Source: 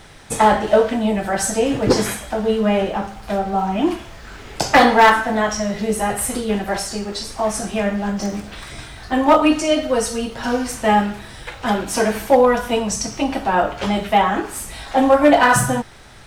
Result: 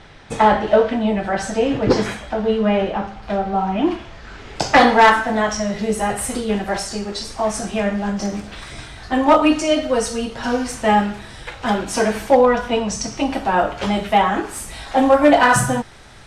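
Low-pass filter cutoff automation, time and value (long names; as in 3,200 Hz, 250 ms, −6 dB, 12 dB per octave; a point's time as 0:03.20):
0:03.93 4,300 Hz
0:05.09 9,300 Hz
0:12.23 9,300 Hz
0:12.69 4,700 Hz
0:13.35 11,000 Hz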